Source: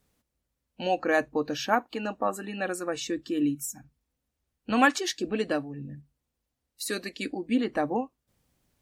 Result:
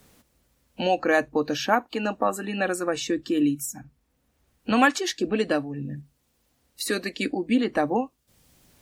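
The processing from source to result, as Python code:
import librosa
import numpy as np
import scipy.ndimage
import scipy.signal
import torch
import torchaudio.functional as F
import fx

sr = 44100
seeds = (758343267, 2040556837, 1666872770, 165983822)

y = fx.band_squash(x, sr, depth_pct=40)
y = F.gain(torch.from_numpy(y), 4.0).numpy()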